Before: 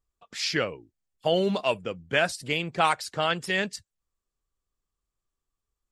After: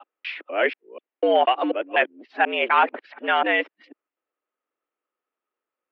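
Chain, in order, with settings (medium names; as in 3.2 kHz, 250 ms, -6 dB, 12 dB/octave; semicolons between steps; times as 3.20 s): time reversed locally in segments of 245 ms; overload inside the chain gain 15 dB; mistuned SSB +100 Hz 200–2700 Hz; trim +6 dB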